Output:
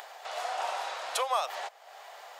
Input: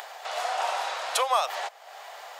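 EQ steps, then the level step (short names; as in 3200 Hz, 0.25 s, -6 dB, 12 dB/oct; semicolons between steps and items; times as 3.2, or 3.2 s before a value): low shelf 230 Hz +8.5 dB; -5.5 dB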